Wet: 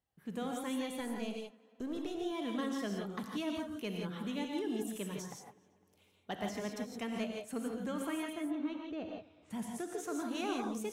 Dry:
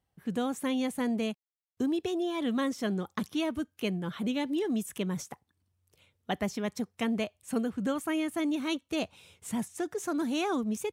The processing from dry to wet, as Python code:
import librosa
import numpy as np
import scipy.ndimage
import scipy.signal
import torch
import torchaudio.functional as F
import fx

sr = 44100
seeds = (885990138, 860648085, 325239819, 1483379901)

y = fx.halfwave_gain(x, sr, db=-7.0, at=(1.0, 2.15))
y = fx.low_shelf(y, sr, hz=150.0, db=-5.0)
y = 10.0 ** (-20.5 / 20.0) * np.tanh(y / 10.0 ** (-20.5 / 20.0))
y = fx.spacing_loss(y, sr, db_at_10k=36, at=(8.32, 9.5), fade=0.02)
y = fx.echo_tape(y, sr, ms=253, feedback_pct=65, wet_db=-21.5, lp_hz=3900.0, drive_db=26.0, wow_cents=8)
y = fx.rev_gated(y, sr, seeds[0], gate_ms=190, shape='rising', drr_db=1.5)
y = y * librosa.db_to_amplitude(-7.0)